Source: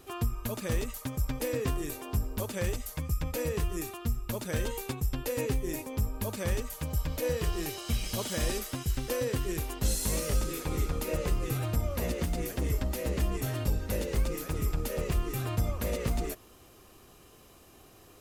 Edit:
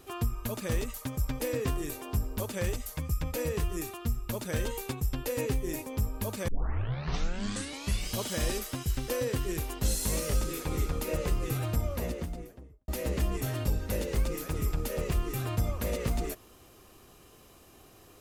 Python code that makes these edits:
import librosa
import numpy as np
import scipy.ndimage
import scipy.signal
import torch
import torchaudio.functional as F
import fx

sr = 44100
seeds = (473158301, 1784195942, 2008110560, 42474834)

y = fx.studio_fade_out(x, sr, start_s=11.75, length_s=1.13)
y = fx.edit(y, sr, fx.tape_start(start_s=6.48, length_s=1.65), tone=tone)